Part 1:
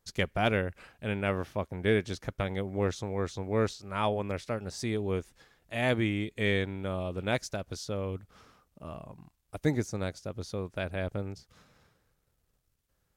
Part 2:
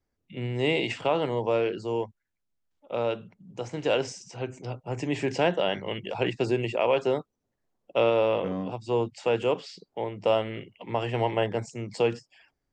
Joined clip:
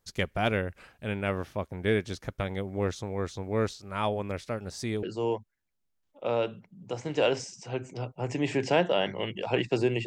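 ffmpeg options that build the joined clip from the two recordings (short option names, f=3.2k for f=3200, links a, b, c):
-filter_complex "[0:a]apad=whole_dur=10.06,atrim=end=10.06,atrim=end=5.032[a];[1:a]atrim=start=1.708:end=6.74[b];[a][b]acrossfade=d=0.004:c1=hsin:c2=hsin"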